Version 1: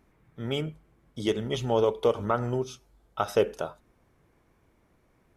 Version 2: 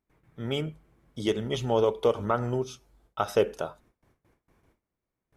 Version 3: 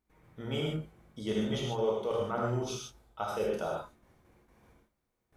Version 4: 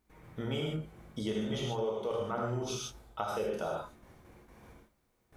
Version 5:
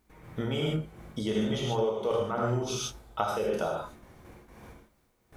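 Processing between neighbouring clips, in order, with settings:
gate with hold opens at -54 dBFS
reverse; compression 6:1, threshold -33 dBFS, peak gain reduction 15 dB; reverse; gated-style reverb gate 170 ms flat, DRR -3 dB
compression 3:1, threshold -41 dBFS, peak gain reduction 12.5 dB; trim +7 dB
tremolo 2.8 Hz, depth 32%; trim +6.5 dB

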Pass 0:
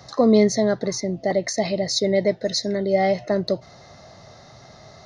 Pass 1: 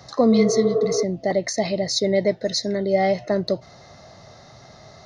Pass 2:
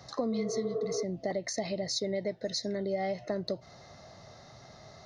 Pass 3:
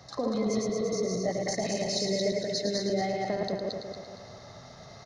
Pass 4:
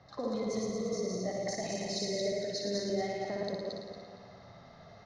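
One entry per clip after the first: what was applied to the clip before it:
spectral replace 0.34–1.01 s, 260–1900 Hz before
compression 4:1, threshold -24 dBFS, peak gain reduction 10.5 dB; trim -6 dB
backward echo that repeats 116 ms, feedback 64%, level -1.5 dB; delay 109 ms -7 dB
level-controlled noise filter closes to 2.8 kHz, open at -24 dBFS; flutter echo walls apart 10.2 m, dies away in 0.64 s; trim -6.5 dB

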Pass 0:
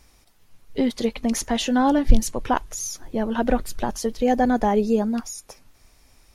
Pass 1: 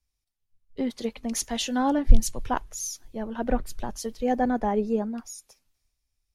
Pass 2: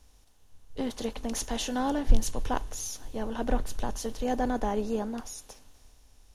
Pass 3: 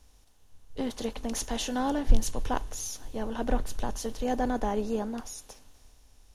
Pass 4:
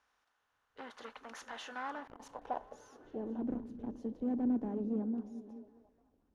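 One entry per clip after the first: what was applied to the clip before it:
three bands expanded up and down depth 70%; trim -6 dB
spectral levelling over time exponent 0.6; trim -6.5 dB
no audible change
overload inside the chain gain 26 dB; band-pass sweep 1.4 kHz -> 260 Hz, 1.87–3.42 s; repeats whose band climbs or falls 212 ms, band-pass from 180 Hz, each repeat 0.7 oct, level -10 dB; trim +1 dB

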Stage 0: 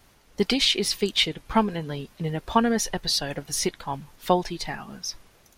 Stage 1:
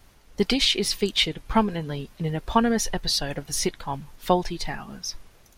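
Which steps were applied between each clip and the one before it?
bass shelf 71 Hz +9 dB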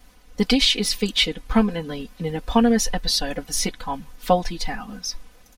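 comb 4 ms, depth 93%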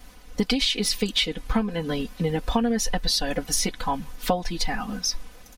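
compression 5:1, threshold -25 dBFS, peak gain reduction 13 dB; trim +4.5 dB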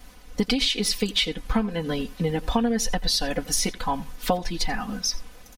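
delay 87 ms -20.5 dB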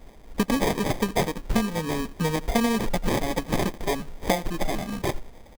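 sample-rate reducer 1.4 kHz, jitter 0%

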